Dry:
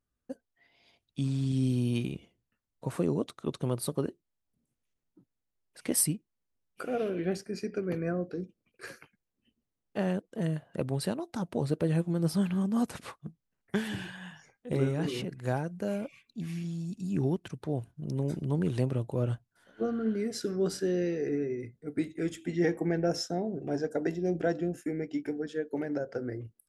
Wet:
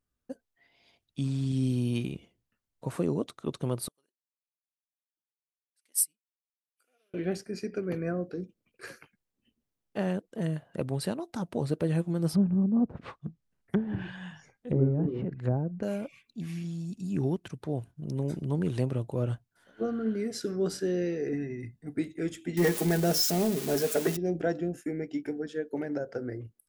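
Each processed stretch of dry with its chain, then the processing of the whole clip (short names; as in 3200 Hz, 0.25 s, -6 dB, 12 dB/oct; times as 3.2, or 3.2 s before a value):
3.88–7.14 differentiator + upward expander 2.5:1, over -36 dBFS
12.33–15.83 treble ducked by the level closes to 610 Hz, closed at -28 dBFS + low shelf 260 Hz +6 dB
21.33–21.95 bell 570 Hz -4 dB 0.36 oct + comb 1.1 ms, depth 69%
22.57–24.17 switching spikes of -26.5 dBFS + comb 4.8 ms, depth 53% + sample leveller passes 1
whole clip: dry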